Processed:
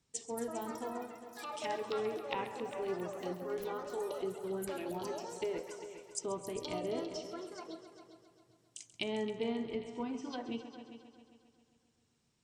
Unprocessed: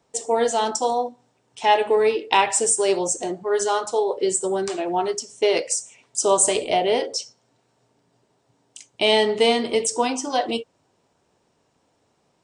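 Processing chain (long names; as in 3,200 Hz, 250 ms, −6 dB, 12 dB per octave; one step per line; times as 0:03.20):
treble cut that deepens with the level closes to 1,000 Hz, closed at −18.5 dBFS
guitar amp tone stack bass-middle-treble 6-0-2
delay with pitch and tempo change per echo 272 ms, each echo +6 semitones, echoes 3, each echo −6 dB
on a send: echo machine with several playback heads 134 ms, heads all three, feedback 43%, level −15 dB
on the sum: level +8 dB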